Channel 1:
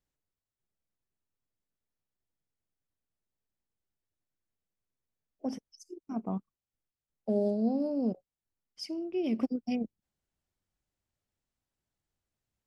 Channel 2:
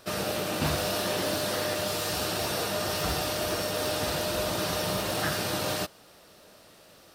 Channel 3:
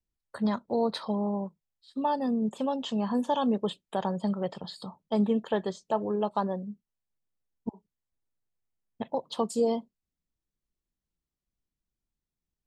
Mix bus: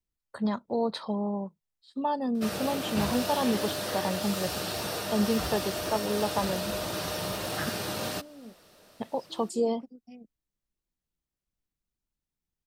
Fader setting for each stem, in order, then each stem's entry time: −17.0, −3.5, −1.0 decibels; 0.40, 2.35, 0.00 seconds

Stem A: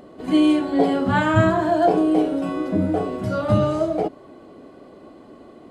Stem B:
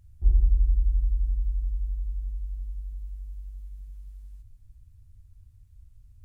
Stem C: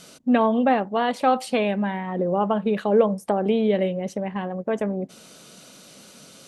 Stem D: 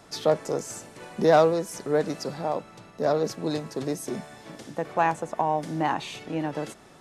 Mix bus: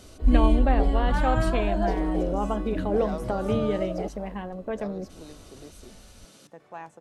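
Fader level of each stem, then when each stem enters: −10.5, 0.0, −6.5, −17.5 decibels; 0.00, 0.00, 0.00, 1.75 seconds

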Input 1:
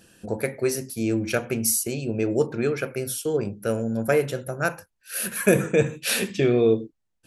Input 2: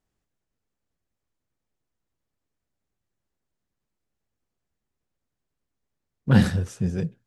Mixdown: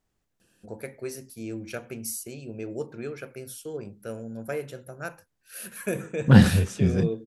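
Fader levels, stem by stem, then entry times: −11.0, +3.0 decibels; 0.40, 0.00 seconds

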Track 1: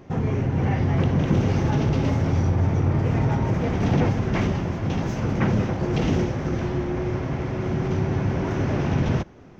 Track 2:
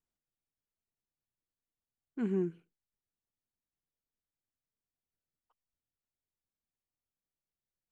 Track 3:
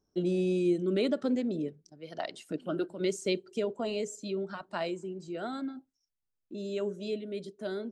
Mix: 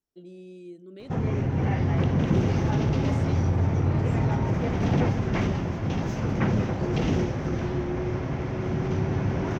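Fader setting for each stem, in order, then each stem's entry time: −2.5, −2.0, −16.0 decibels; 1.00, 0.00, 0.00 seconds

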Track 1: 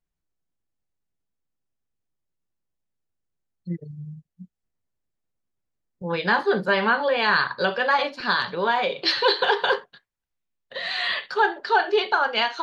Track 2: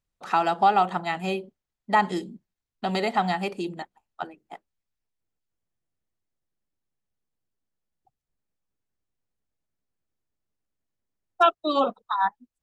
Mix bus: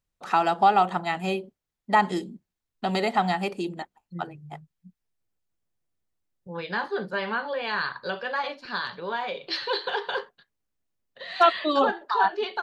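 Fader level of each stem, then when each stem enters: −8.0, +0.5 decibels; 0.45, 0.00 seconds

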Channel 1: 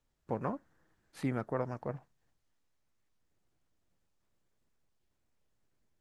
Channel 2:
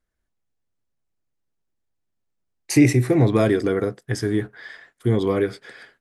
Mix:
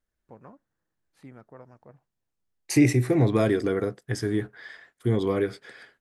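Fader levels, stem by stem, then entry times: −13.0, −4.0 decibels; 0.00, 0.00 seconds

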